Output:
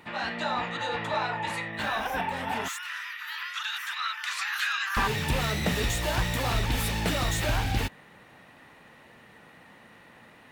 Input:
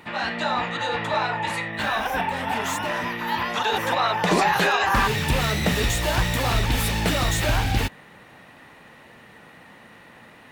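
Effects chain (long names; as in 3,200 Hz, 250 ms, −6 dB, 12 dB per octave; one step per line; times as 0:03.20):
0:02.68–0:04.97: Chebyshev high-pass filter 1,300 Hz, order 4
level −5 dB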